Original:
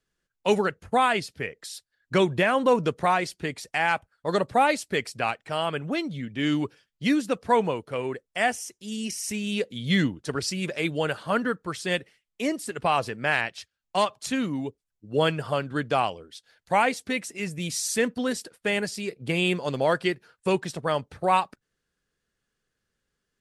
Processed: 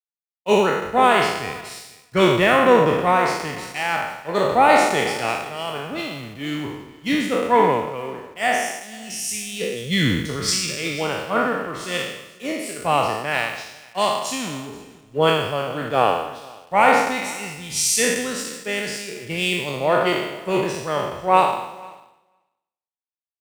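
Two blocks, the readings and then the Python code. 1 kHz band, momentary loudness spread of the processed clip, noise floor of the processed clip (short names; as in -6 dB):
+6.5 dB, 15 LU, under -85 dBFS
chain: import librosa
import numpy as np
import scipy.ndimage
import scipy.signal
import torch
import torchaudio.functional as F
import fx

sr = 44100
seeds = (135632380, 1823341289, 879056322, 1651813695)

p1 = fx.spec_trails(x, sr, decay_s=1.67)
p2 = fx.notch(p1, sr, hz=1600.0, q=11.0)
p3 = fx.quant_dither(p2, sr, seeds[0], bits=6, dither='none')
p4 = p2 + (p3 * 10.0 ** (-4.0 / 20.0))
p5 = fx.echo_feedback(p4, sr, ms=491, feedback_pct=20, wet_db=-14.0)
p6 = fx.band_widen(p5, sr, depth_pct=100)
y = p6 * 10.0 ** (-4.0 / 20.0)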